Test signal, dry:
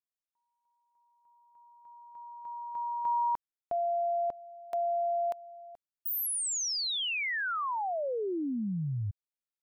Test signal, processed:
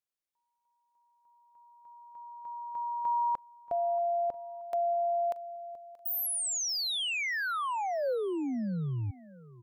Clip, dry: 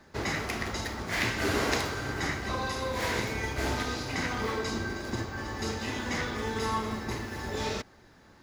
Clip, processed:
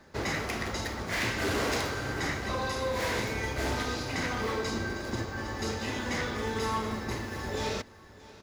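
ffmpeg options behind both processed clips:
-filter_complex "[0:a]equalizer=f=530:t=o:w=0.3:g=3.5,asoftclip=type=hard:threshold=-25dB,asplit=2[a][b];[b]aecho=0:1:630|1260|1890:0.1|0.034|0.0116[c];[a][c]amix=inputs=2:normalize=0"

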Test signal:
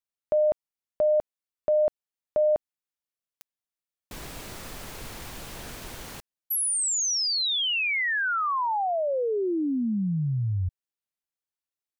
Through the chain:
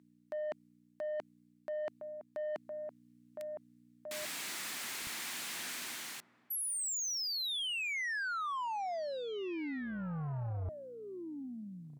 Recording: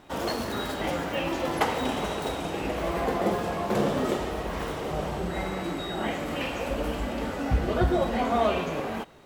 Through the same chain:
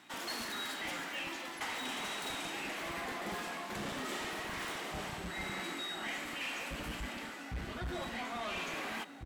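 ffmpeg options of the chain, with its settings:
-filter_complex "[0:a]aeval=exprs='val(0)+0.00447*(sin(2*PI*60*n/s)+sin(2*PI*2*60*n/s)/2+sin(2*PI*3*60*n/s)/3+sin(2*PI*4*60*n/s)/4+sin(2*PI*5*60*n/s)/5)':c=same,equalizer=f=500:t=o:w=1:g=-10,equalizer=f=2k:t=o:w=1:g=7,equalizer=f=4k:t=o:w=1:g=4,equalizer=f=8k:t=o:w=1:g=6,asplit=2[a][b];[b]adelay=1691,volume=-11dB,highshelf=f=4k:g=-38[c];[a][c]amix=inputs=2:normalize=0,acrossover=split=210[d][e];[d]acrusher=bits=4:mix=0:aa=0.5[f];[f][e]amix=inputs=2:normalize=0,equalizer=f=13k:t=o:w=0.6:g=3.5,areverse,acompressor=threshold=-33dB:ratio=8:attack=34:release=898:knee=6:detection=rms,areverse,asoftclip=type=tanh:threshold=-33.5dB"

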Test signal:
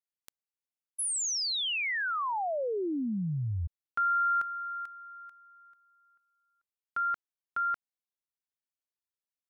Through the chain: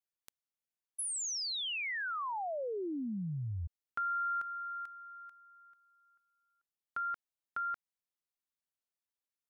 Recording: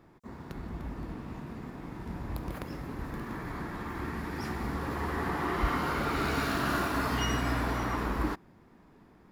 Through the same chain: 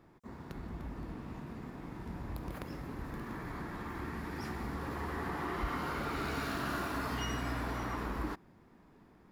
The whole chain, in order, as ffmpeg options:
-af "acompressor=threshold=-39dB:ratio=1.5:attack=54:release=83,volume=-3dB"

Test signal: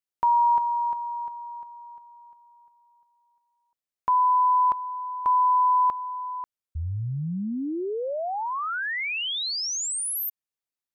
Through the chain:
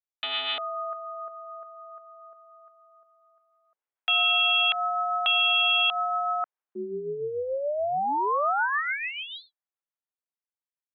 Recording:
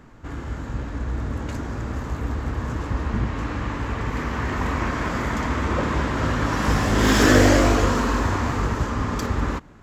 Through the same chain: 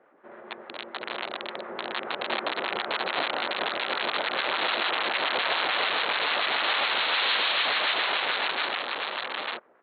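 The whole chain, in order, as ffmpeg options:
-filter_complex "[0:a]lowpass=1.3k,aresample=8000,aeval=exprs='(mod(11.9*val(0)+1,2)-1)/11.9':c=same,aresample=44100,aeval=exprs='val(0)*sin(2*PI*290*n/s)':c=same,highpass=610,aemphasis=mode=production:type=50fm,acrossover=split=830[a][b];[a]aeval=exprs='val(0)*(1-0.5/2+0.5/2*cos(2*PI*6.9*n/s))':c=same[c];[b]aeval=exprs='val(0)*(1-0.5/2-0.5/2*cos(2*PI*6.9*n/s))':c=same[d];[c][d]amix=inputs=2:normalize=0,dynaudnorm=f=330:g=13:m=13dB,alimiter=limit=-15dB:level=0:latency=1:release=75"

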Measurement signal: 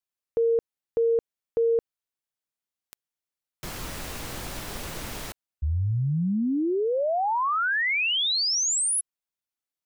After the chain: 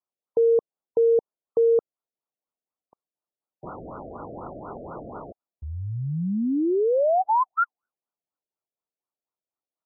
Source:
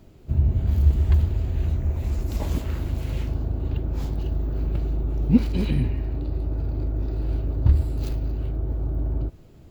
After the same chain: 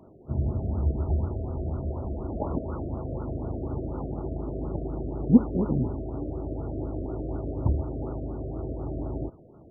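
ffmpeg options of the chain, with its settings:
-af "highpass=f=370:p=1,afftfilt=real='re*lt(b*sr/1024,700*pow(1500/700,0.5+0.5*sin(2*PI*4.1*pts/sr)))':imag='im*lt(b*sr/1024,700*pow(1500/700,0.5+0.5*sin(2*PI*4.1*pts/sr)))':win_size=1024:overlap=0.75,volume=6dB"

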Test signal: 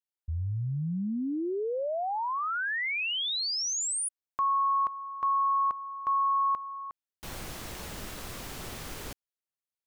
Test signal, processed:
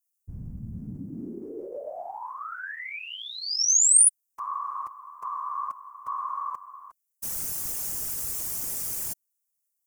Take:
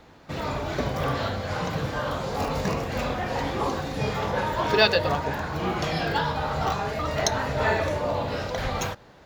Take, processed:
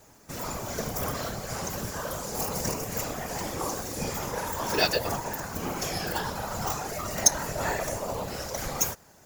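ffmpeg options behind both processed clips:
-filter_complex "[0:a]afftfilt=real='hypot(re,im)*cos(2*PI*random(0))':imag='hypot(re,im)*sin(2*PI*random(1))':win_size=512:overlap=0.75,acrossover=split=1400[a][b];[b]aexciter=amount=11:drive=3.5:freq=5.6k[c];[a][c]amix=inputs=2:normalize=0"

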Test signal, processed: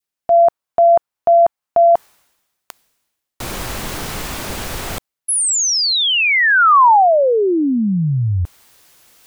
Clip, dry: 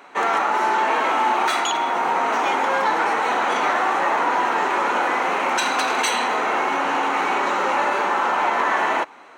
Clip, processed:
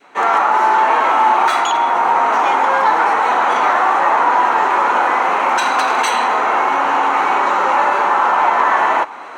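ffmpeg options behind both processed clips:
-af "adynamicequalizer=threshold=0.0251:dfrequency=1000:dqfactor=0.88:tfrequency=1000:tqfactor=0.88:attack=5:release=100:ratio=0.375:range=4:mode=boostabove:tftype=bell,areverse,acompressor=mode=upward:threshold=-23dB:ratio=2.5,areverse"

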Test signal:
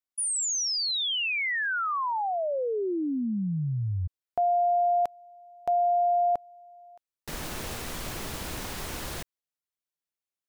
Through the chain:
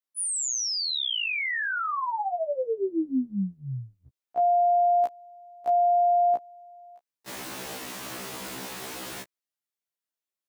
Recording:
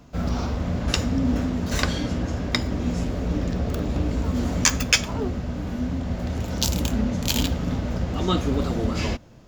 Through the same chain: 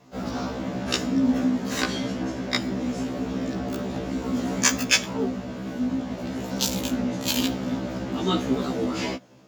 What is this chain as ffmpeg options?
-af "highpass=190,adynamicequalizer=threshold=0.01:dfrequency=250:dqfactor=1.4:tfrequency=250:tqfactor=1.4:attack=5:release=100:ratio=0.438:range=1.5:mode=boostabove:tftype=bell,afftfilt=real='re*1.73*eq(mod(b,3),0)':imag='im*1.73*eq(mod(b,3),0)':win_size=2048:overlap=0.75,volume=2dB"

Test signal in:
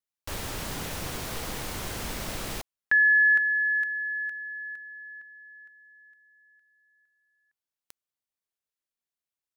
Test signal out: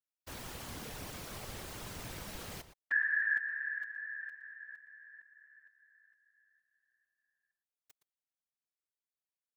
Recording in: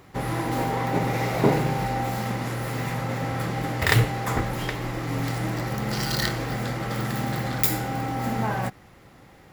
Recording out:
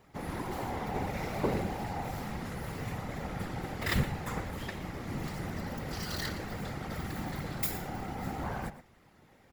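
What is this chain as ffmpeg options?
-filter_complex "[0:a]asplit=2[a][b];[b]adelay=116.6,volume=-13dB,highshelf=f=4k:g=-2.62[c];[a][c]amix=inputs=2:normalize=0,afftfilt=real='hypot(re,im)*cos(2*PI*random(0))':imag='hypot(re,im)*sin(2*PI*random(1))':win_size=512:overlap=0.75,volume=-4.5dB"

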